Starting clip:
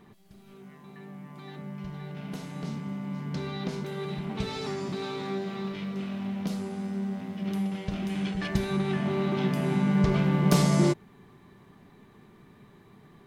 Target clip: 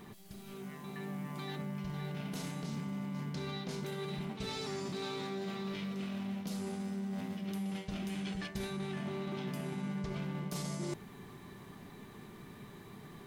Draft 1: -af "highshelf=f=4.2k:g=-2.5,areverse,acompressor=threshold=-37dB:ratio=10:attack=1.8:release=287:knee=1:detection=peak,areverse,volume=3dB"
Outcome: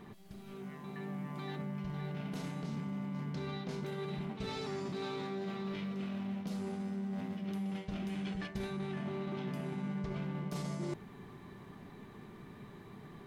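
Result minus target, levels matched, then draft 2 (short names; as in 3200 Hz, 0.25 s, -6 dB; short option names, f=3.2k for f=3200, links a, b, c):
8000 Hz band -7.5 dB
-af "highshelf=f=4.2k:g=8.5,areverse,acompressor=threshold=-37dB:ratio=10:attack=1.8:release=287:knee=1:detection=peak,areverse,volume=3dB"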